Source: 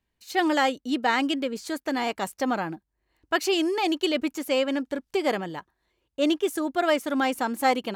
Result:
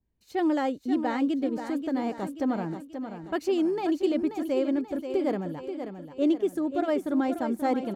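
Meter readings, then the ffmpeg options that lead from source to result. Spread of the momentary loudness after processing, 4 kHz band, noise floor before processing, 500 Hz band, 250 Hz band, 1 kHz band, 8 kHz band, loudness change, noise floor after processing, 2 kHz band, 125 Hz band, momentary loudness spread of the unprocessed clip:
9 LU, -14.5 dB, -79 dBFS, -1.5 dB, +1.0 dB, -6.5 dB, under -10 dB, -2.5 dB, -51 dBFS, -11.5 dB, +3.0 dB, 7 LU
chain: -filter_complex "[0:a]tiltshelf=f=710:g=9,asplit=2[s0][s1];[s1]aecho=0:1:533|1066|1599|2132|2665:0.376|0.173|0.0795|0.0366|0.0168[s2];[s0][s2]amix=inputs=2:normalize=0,adynamicequalizer=threshold=0.00282:dfrequency=2900:dqfactor=3.5:tfrequency=2900:tqfactor=3.5:attack=5:release=100:ratio=0.375:range=2:mode=cutabove:tftype=bell,volume=0.531"

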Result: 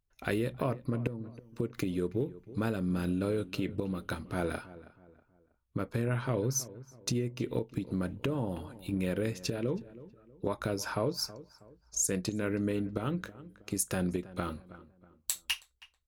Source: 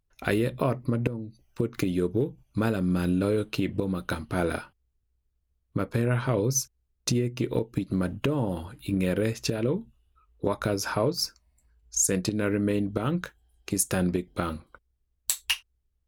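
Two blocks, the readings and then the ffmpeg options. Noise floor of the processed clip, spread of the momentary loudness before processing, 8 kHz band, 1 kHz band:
-72 dBFS, 8 LU, -6.0 dB, -6.0 dB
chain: -filter_complex "[0:a]asplit=2[s0][s1];[s1]adelay=321,lowpass=f=1900:p=1,volume=0.141,asplit=2[s2][s3];[s3]adelay=321,lowpass=f=1900:p=1,volume=0.38,asplit=2[s4][s5];[s5]adelay=321,lowpass=f=1900:p=1,volume=0.38[s6];[s0][s2][s4][s6]amix=inputs=4:normalize=0,volume=0.501"

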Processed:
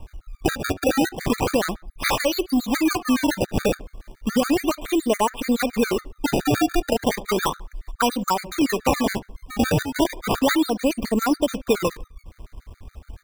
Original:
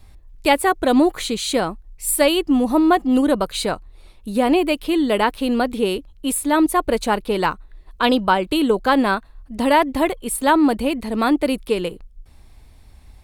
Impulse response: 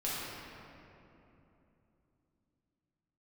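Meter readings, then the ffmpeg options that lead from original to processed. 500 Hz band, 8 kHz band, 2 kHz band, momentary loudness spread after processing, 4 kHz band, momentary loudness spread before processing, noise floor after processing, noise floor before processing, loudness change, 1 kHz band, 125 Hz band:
-3.5 dB, -3.5 dB, -3.5 dB, 5 LU, -3.0 dB, 8 LU, -60 dBFS, -47 dBFS, -4.0 dB, -5.5 dB, +6.0 dB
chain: -filter_complex "[0:a]acompressor=threshold=0.0631:ratio=6,acrusher=samples=24:mix=1:aa=0.000001:lfo=1:lforange=38.4:lforate=0.34,asplit=2[s0][s1];[s1]adelay=72,lowpass=f=2400:p=1,volume=0.141,asplit=2[s2][s3];[s3]adelay=72,lowpass=f=2400:p=1,volume=0.34,asplit=2[s4][s5];[s5]adelay=72,lowpass=f=2400:p=1,volume=0.34[s6];[s2][s4][s6]amix=inputs=3:normalize=0[s7];[s0][s7]amix=inputs=2:normalize=0,afftfilt=real='re*gt(sin(2*PI*7.1*pts/sr)*(1-2*mod(floor(b*sr/1024/1200),2)),0)':imag='im*gt(sin(2*PI*7.1*pts/sr)*(1-2*mod(floor(b*sr/1024/1200),2)),0)':win_size=1024:overlap=0.75,volume=2.66"

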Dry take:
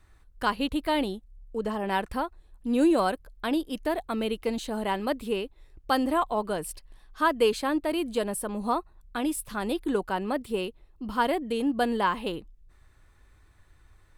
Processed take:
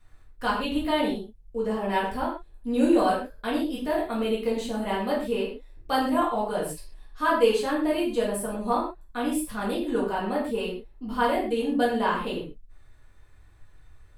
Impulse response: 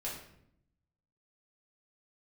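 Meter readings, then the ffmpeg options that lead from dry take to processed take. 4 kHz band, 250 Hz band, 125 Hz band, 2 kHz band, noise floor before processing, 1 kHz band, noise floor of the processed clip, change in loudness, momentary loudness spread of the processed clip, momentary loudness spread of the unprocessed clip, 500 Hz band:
+0.5 dB, +1.5 dB, +1.5 dB, +1.0 dB, -58 dBFS, +1.5 dB, -52 dBFS, +1.5 dB, 12 LU, 11 LU, +2.5 dB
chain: -filter_complex "[1:a]atrim=start_sample=2205,afade=t=out:st=0.2:d=0.01,atrim=end_sample=9261[s0];[0:a][s0]afir=irnorm=-1:irlink=0"

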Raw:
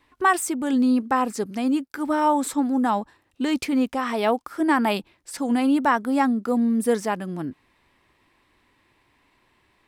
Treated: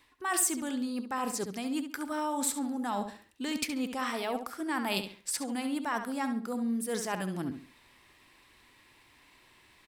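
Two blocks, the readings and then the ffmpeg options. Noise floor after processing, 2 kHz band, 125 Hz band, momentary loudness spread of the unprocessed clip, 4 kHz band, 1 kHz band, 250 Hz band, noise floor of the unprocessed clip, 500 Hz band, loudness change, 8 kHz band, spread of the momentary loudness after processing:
-62 dBFS, -8.5 dB, -6.0 dB, 9 LU, -2.5 dB, -11.5 dB, -11.5 dB, -66 dBFS, -11.0 dB, -10.0 dB, +1.5 dB, 6 LU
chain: -filter_complex "[0:a]areverse,acompressor=threshold=0.0282:ratio=6,areverse,highshelf=f=2300:g=11,asplit=2[s0][s1];[s1]adelay=69,lowpass=f=4800:p=1,volume=0.398,asplit=2[s2][s3];[s3]adelay=69,lowpass=f=4800:p=1,volume=0.31,asplit=2[s4][s5];[s5]adelay=69,lowpass=f=4800:p=1,volume=0.31,asplit=2[s6][s7];[s7]adelay=69,lowpass=f=4800:p=1,volume=0.31[s8];[s0][s2][s4][s6][s8]amix=inputs=5:normalize=0,volume=0.841"

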